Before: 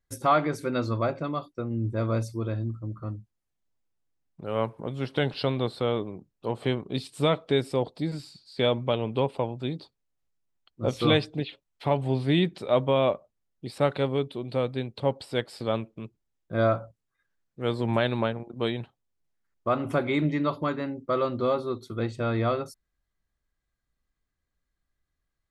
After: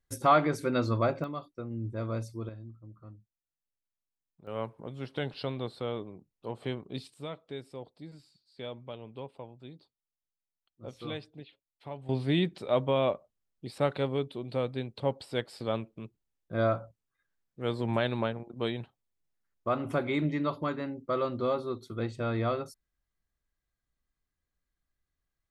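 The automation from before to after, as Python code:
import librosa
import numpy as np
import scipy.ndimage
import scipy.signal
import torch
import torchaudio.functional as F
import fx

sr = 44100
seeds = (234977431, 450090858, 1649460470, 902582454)

y = fx.gain(x, sr, db=fx.steps((0.0, -0.5), (1.24, -7.0), (2.49, -15.0), (4.47, -8.0), (7.14, -16.5), (12.09, -4.0)))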